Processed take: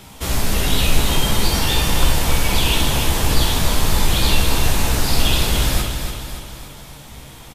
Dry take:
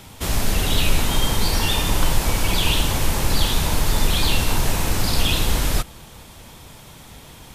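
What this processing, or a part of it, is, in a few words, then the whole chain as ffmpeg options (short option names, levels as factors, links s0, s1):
slapback doubling: -filter_complex "[0:a]aecho=1:1:287|574|861|1148|1435|1722:0.447|0.232|0.121|0.0628|0.0327|0.017,asplit=3[s0][s1][s2];[s1]adelay=15,volume=0.531[s3];[s2]adelay=64,volume=0.473[s4];[s0][s3][s4]amix=inputs=3:normalize=0"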